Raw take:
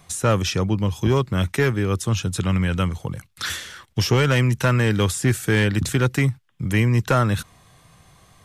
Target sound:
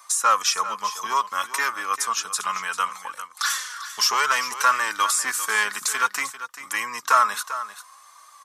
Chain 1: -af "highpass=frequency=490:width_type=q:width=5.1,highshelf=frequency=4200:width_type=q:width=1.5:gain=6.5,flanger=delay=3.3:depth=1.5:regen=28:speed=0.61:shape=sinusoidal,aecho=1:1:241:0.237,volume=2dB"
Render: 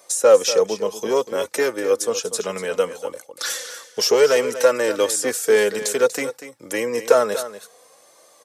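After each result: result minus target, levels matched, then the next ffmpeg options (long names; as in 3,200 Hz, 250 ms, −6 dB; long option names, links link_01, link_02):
500 Hz band +19.0 dB; echo 154 ms early
-af "highpass=frequency=1100:width_type=q:width=5.1,highshelf=frequency=4200:width_type=q:width=1.5:gain=6.5,flanger=delay=3.3:depth=1.5:regen=28:speed=0.61:shape=sinusoidal,aecho=1:1:241:0.237,volume=2dB"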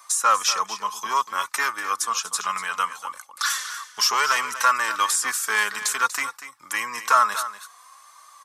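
echo 154 ms early
-af "highpass=frequency=1100:width_type=q:width=5.1,highshelf=frequency=4200:width_type=q:width=1.5:gain=6.5,flanger=delay=3.3:depth=1.5:regen=28:speed=0.61:shape=sinusoidal,aecho=1:1:395:0.237,volume=2dB"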